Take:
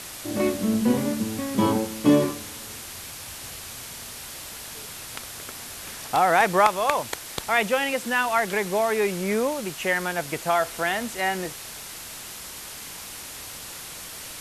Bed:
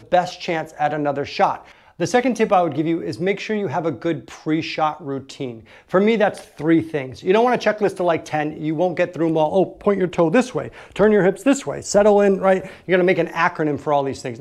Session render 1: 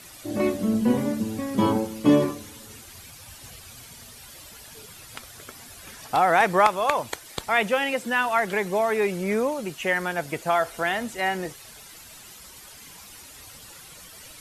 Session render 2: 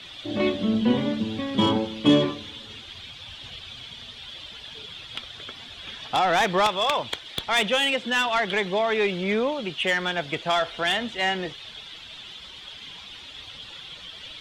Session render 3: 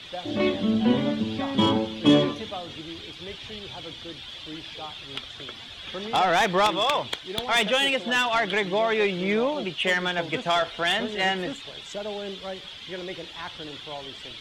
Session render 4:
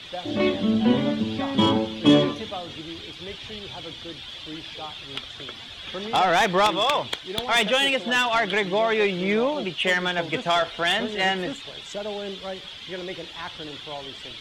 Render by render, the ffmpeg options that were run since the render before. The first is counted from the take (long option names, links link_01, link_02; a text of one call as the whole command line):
ffmpeg -i in.wav -af "afftdn=noise_reduction=11:noise_floor=-39" out.wav
ffmpeg -i in.wav -filter_complex "[0:a]lowpass=frequency=3400:width_type=q:width=6.5,acrossover=split=400[link_01][link_02];[link_02]asoftclip=type=tanh:threshold=-16.5dB[link_03];[link_01][link_03]amix=inputs=2:normalize=0" out.wav
ffmpeg -i in.wav -i bed.wav -filter_complex "[1:a]volume=-20dB[link_01];[0:a][link_01]amix=inputs=2:normalize=0" out.wav
ffmpeg -i in.wav -af "volume=1.5dB" out.wav